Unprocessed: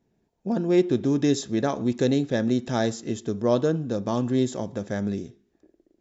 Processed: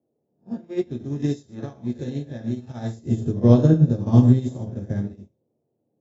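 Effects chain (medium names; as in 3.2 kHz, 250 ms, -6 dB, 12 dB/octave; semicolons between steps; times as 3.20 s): reverse spectral sustain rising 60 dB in 0.41 s; peaking EQ 96 Hz +13.5 dB 2.4 oct; band noise 110–550 Hz -38 dBFS; 2.96–5.13 s: bass shelf 390 Hz +9 dB; reverberation, pre-delay 3 ms, DRR -0.5 dB; upward expansion 2.5:1, over -27 dBFS; trim -4.5 dB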